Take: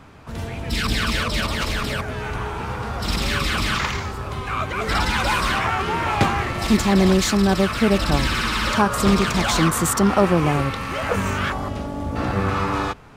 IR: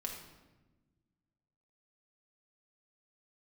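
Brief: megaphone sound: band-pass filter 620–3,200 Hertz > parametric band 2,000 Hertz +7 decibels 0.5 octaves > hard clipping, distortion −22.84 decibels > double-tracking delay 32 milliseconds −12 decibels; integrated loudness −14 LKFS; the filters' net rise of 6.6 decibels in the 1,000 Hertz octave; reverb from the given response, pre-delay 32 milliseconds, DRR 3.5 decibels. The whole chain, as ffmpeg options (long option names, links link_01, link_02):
-filter_complex "[0:a]equalizer=frequency=1000:width_type=o:gain=8.5,asplit=2[link_01][link_02];[1:a]atrim=start_sample=2205,adelay=32[link_03];[link_02][link_03]afir=irnorm=-1:irlink=0,volume=-3.5dB[link_04];[link_01][link_04]amix=inputs=2:normalize=0,highpass=620,lowpass=3200,equalizer=frequency=2000:width_type=o:width=0.5:gain=7,asoftclip=type=hard:threshold=-7.5dB,asplit=2[link_05][link_06];[link_06]adelay=32,volume=-12dB[link_07];[link_05][link_07]amix=inputs=2:normalize=0,volume=3dB"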